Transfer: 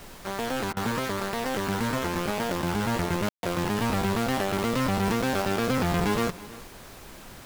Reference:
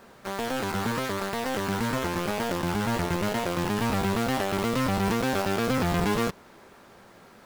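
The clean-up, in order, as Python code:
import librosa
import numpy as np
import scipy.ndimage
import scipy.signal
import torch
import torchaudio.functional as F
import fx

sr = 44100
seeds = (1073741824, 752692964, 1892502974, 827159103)

y = fx.fix_ambience(x, sr, seeds[0], print_start_s=6.68, print_end_s=7.18, start_s=3.29, end_s=3.43)
y = fx.fix_interpolate(y, sr, at_s=(0.73,), length_ms=36.0)
y = fx.noise_reduce(y, sr, print_start_s=6.68, print_end_s=7.18, reduce_db=7.0)
y = fx.fix_echo_inverse(y, sr, delay_ms=323, level_db=-19.0)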